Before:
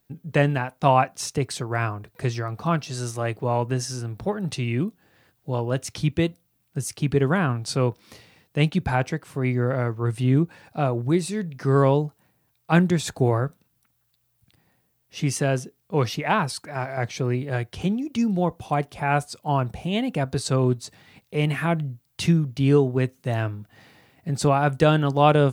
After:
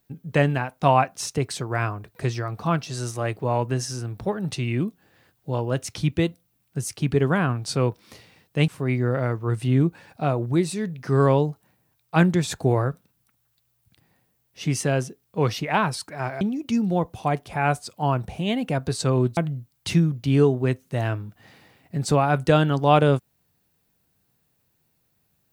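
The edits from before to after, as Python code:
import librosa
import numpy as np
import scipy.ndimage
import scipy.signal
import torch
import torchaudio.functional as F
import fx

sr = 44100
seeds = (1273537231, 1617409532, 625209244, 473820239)

y = fx.edit(x, sr, fx.cut(start_s=8.68, length_s=0.56),
    fx.cut(start_s=16.97, length_s=0.9),
    fx.cut(start_s=20.83, length_s=0.87), tone=tone)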